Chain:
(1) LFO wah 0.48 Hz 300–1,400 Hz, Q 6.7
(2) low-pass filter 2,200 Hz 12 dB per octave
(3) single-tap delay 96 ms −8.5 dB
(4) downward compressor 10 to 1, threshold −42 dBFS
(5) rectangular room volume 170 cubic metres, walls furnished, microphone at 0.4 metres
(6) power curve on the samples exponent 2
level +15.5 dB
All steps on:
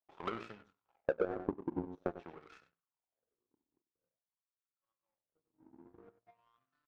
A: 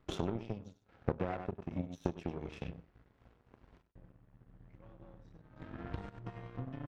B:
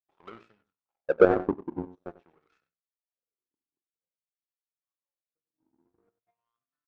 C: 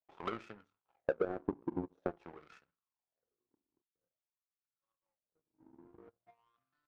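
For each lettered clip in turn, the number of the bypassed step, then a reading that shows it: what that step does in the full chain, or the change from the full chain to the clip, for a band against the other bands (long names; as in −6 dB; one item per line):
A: 1, 125 Hz band +12.5 dB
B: 4, average gain reduction 3.5 dB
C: 3, change in momentary loudness spread +2 LU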